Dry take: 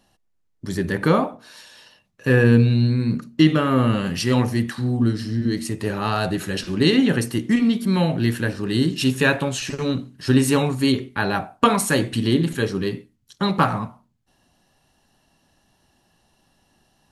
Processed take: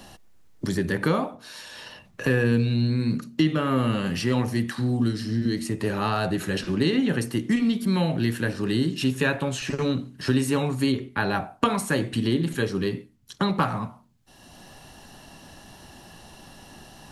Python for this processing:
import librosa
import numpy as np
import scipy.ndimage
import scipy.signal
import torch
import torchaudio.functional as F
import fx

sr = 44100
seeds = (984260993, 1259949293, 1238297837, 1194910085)

y = fx.band_squash(x, sr, depth_pct=70)
y = y * 10.0 ** (-4.5 / 20.0)